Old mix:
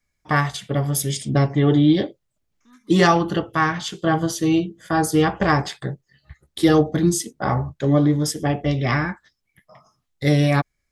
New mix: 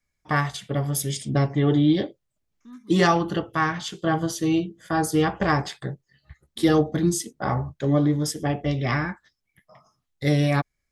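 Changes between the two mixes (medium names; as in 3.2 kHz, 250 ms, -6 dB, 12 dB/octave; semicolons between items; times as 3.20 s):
first voice -3.5 dB; second voice: remove high-pass 690 Hz 6 dB/octave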